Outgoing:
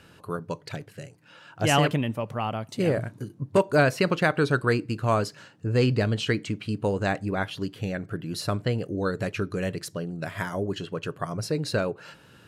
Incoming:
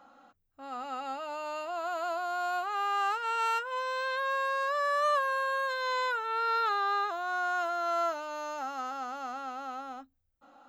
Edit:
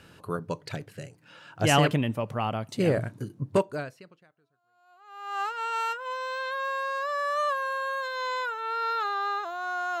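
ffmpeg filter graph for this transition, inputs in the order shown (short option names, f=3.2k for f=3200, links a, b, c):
-filter_complex "[0:a]apad=whole_dur=10,atrim=end=10,atrim=end=5.41,asetpts=PTS-STARTPTS[a];[1:a]atrim=start=1.19:end=7.66,asetpts=PTS-STARTPTS[b];[a][b]acrossfade=d=1.88:c1=exp:c2=exp"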